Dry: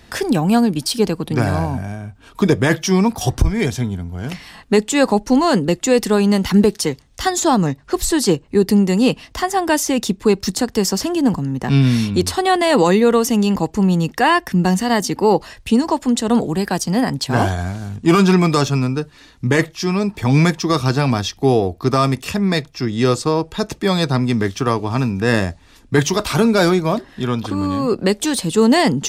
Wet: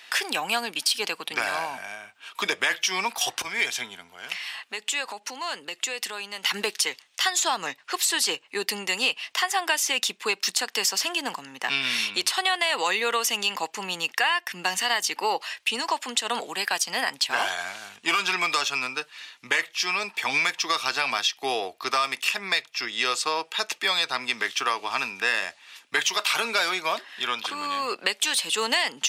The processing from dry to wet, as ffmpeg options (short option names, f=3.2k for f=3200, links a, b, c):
-filter_complex "[0:a]asettb=1/sr,asplit=3[a][b][c];[a]atrim=end=4.094[d];[b]atrim=start=4.09:end=6.43,asetpts=PTS-STARTPTS,afade=t=in:d=0.004:c=qsin,afade=t=out:st=2.336:d=0.004:c=qsin,acompressor=threshold=-26dB:ratio=3:attack=3.2:release=140:knee=1:detection=peak[e];[c]atrim=start=6.426[f];[d][e]acrossfade=d=0.004:c1=hsin:c2=qsin[g];[g][f]acrossfade=d=0.004:c1=qsin:c2=hsin,highpass=1k,equalizer=f=2.7k:w=1.4:g=8.5,acompressor=threshold=-20dB:ratio=6"